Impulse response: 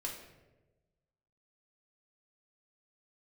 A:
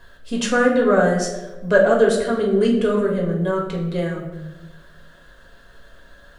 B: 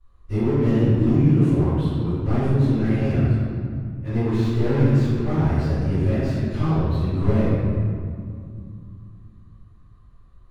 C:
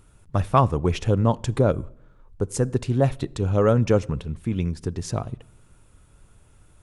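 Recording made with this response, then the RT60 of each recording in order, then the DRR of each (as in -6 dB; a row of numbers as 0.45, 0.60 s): A; 1.1 s, 2.3 s, not exponential; -1.5, -19.0, 19.5 dB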